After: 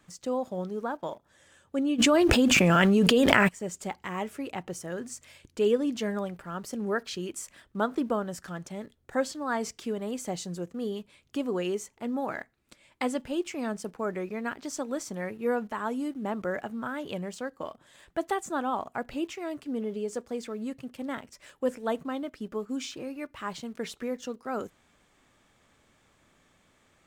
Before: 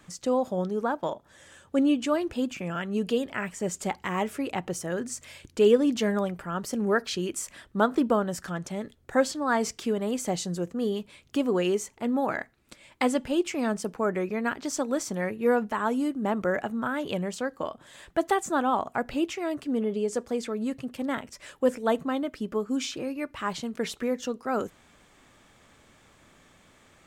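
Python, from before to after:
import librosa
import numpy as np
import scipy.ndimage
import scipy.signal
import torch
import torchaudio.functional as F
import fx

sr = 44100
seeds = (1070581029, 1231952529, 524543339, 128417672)

p1 = np.where(np.abs(x) >= 10.0 ** (-40.0 / 20.0), x, 0.0)
p2 = x + F.gain(torch.from_numpy(p1), -11.0).numpy()
p3 = fx.env_flatten(p2, sr, amount_pct=100, at=(1.98, 3.47), fade=0.02)
y = F.gain(torch.from_numpy(p3), -7.0).numpy()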